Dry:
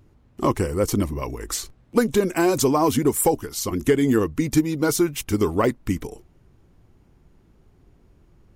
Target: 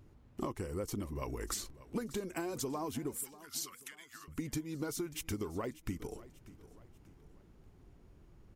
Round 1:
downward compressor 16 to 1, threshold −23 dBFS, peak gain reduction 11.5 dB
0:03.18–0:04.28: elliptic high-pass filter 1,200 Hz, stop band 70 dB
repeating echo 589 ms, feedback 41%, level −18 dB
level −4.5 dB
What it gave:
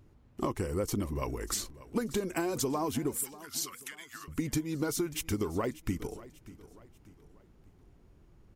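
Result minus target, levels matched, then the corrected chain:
downward compressor: peak gain reduction −6.5 dB
downward compressor 16 to 1, threshold −30 dBFS, peak gain reduction 18 dB
0:03.18–0:04.28: elliptic high-pass filter 1,200 Hz, stop band 70 dB
repeating echo 589 ms, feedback 41%, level −18 dB
level −4.5 dB

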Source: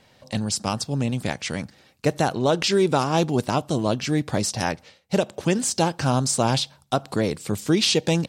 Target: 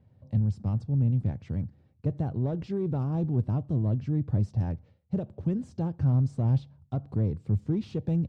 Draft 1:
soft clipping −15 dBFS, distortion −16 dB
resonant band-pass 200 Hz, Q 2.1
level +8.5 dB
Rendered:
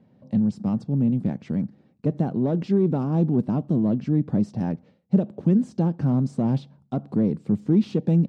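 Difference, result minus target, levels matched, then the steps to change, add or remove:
250 Hz band +4.5 dB
change: resonant band-pass 90 Hz, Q 2.1

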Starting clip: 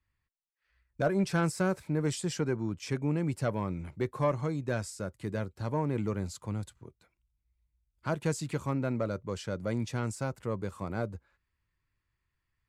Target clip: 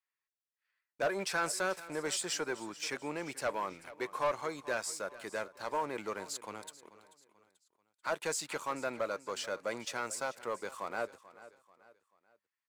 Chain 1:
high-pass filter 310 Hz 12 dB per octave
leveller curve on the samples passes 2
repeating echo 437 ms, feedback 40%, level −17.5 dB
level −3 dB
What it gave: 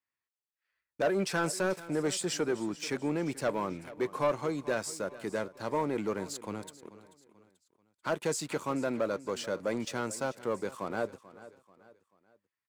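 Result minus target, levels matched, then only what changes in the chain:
250 Hz band +7.0 dB
change: high-pass filter 670 Hz 12 dB per octave

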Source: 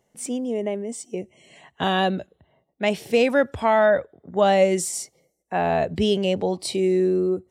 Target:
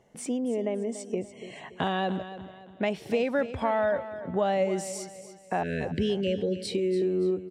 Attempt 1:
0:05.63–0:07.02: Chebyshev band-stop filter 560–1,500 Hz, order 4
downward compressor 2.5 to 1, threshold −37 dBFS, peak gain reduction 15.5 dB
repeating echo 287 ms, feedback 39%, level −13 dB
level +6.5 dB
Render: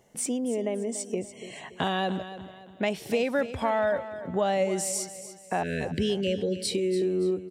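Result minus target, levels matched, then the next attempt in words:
4,000 Hz band +3.0 dB
0:05.63–0:07.02: Chebyshev band-stop filter 560–1,500 Hz, order 4
downward compressor 2.5 to 1, threshold −37 dBFS, peak gain reduction 15.5 dB
low-pass filter 2,900 Hz 6 dB per octave
repeating echo 287 ms, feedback 39%, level −13 dB
level +6.5 dB

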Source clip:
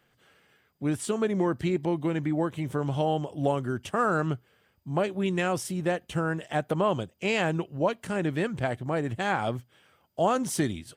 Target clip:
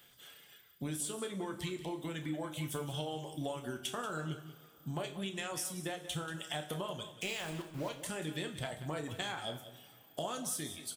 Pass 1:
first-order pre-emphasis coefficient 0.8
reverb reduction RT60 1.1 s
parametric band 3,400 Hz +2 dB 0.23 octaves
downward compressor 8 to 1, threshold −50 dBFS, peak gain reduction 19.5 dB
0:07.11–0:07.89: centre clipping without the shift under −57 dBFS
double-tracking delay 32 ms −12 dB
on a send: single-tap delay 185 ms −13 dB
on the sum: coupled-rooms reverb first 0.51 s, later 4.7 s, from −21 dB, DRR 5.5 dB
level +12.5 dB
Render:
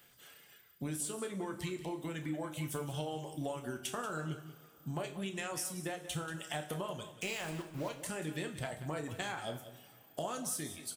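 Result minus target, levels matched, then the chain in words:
4,000 Hz band −3.5 dB
first-order pre-emphasis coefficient 0.8
reverb reduction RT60 1.1 s
parametric band 3,400 Hz +10 dB 0.23 octaves
downward compressor 8 to 1, threshold −50 dBFS, peak gain reduction 19.5 dB
0:07.11–0:07.89: centre clipping without the shift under −57 dBFS
double-tracking delay 32 ms −12 dB
on a send: single-tap delay 185 ms −13 dB
on the sum: coupled-rooms reverb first 0.51 s, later 4.7 s, from −21 dB, DRR 5.5 dB
level +12.5 dB

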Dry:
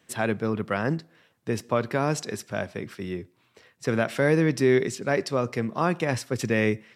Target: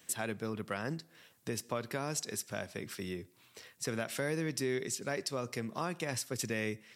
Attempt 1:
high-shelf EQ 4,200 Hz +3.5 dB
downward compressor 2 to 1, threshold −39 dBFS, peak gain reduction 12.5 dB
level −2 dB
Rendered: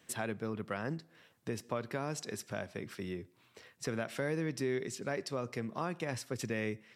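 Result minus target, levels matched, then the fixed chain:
8,000 Hz band −5.5 dB
high-shelf EQ 4,200 Hz +15.5 dB
downward compressor 2 to 1, threshold −39 dBFS, peak gain reduction 13 dB
level −2 dB

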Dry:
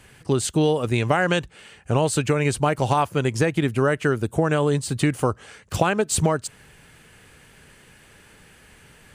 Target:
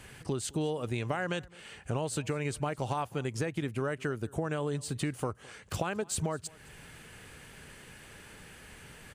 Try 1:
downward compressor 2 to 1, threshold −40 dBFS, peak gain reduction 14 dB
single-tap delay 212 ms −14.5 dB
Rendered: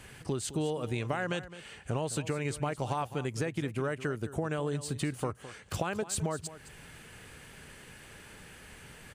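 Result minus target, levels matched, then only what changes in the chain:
echo-to-direct +9 dB
change: single-tap delay 212 ms −23.5 dB

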